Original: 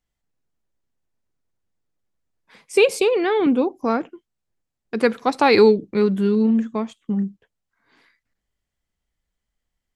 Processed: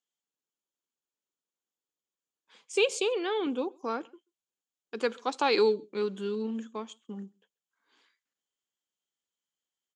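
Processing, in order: cabinet simulation 350–8700 Hz, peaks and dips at 660 Hz -6 dB, 2 kHz -7 dB, 3.2 kHz +8 dB, 6.9 kHz +10 dB; echo from a far wall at 23 m, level -29 dB; trim -8.5 dB

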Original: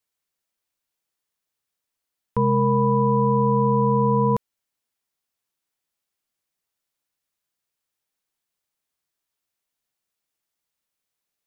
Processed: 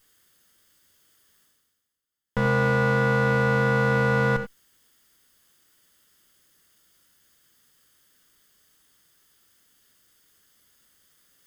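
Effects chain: comb filter that takes the minimum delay 0.61 ms; reverse; upward compressor, threshold -42 dBFS; reverse; gated-style reverb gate 110 ms rising, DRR 8 dB; trim -2 dB

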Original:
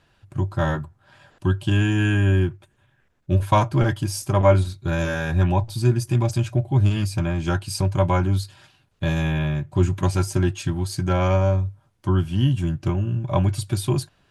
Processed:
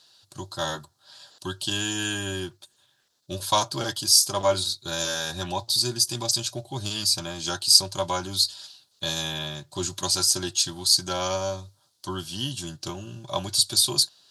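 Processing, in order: high-pass 830 Hz 6 dB/octave; resonant high shelf 3.1 kHz +11 dB, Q 3

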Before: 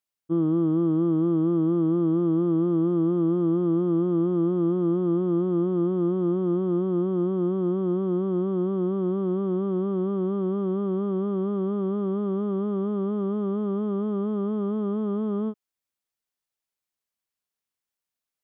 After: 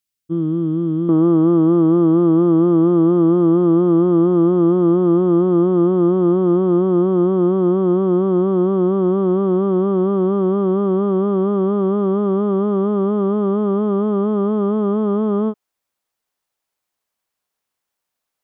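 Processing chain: peaking EQ 800 Hz -11.5 dB 2.1 oct, from 1.09 s +6 dB; trim +7 dB

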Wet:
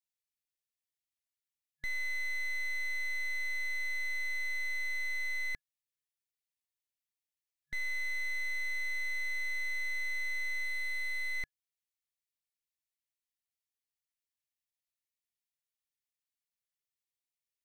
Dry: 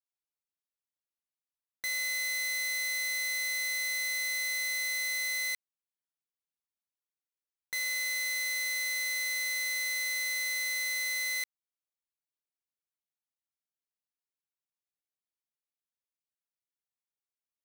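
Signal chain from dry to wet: 10.65–11.35 s: de-hum 45.12 Hz, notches 31; FFT band-reject 140–1700 Hz; slew-rate limiter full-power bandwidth 40 Hz

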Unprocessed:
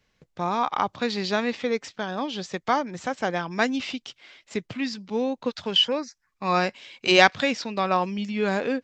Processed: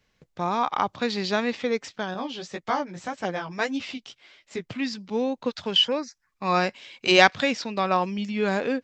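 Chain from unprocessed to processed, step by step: 2.14–4.67 s: flange 1.8 Hz, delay 9.6 ms, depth 9 ms, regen -4%

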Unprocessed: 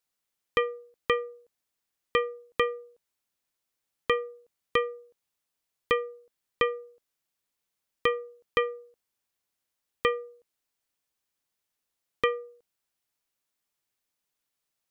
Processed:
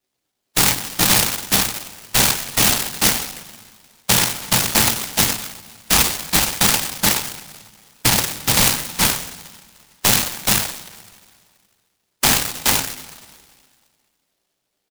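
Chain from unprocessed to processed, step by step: split-band scrambler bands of 1 kHz; band-pass filter 610 Hz, Q 0.84; whisper effect; doubling 18 ms -12.5 dB; on a send: delay 423 ms -4 dB; on the sum: two-slope reverb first 0.47 s, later 2 s, from -18 dB, DRR -6 dB; loudness maximiser +17 dB; delay time shaken by noise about 3.7 kHz, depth 0.3 ms; trim -4 dB

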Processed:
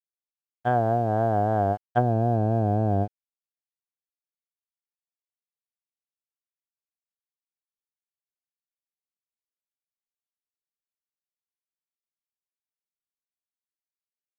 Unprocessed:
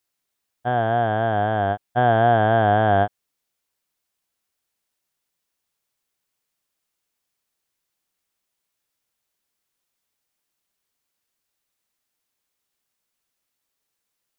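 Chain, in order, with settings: low-pass that closes with the level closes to 390 Hz, closed at -15 dBFS; crossover distortion -53.5 dBFS

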